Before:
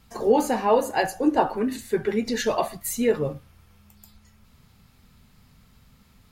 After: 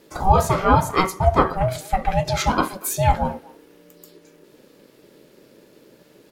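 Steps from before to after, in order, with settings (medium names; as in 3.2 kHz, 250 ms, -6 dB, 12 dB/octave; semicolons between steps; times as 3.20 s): ring modulator 380 Hz; speakerphone echo 240 ms, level -22 dB; trim +7 dB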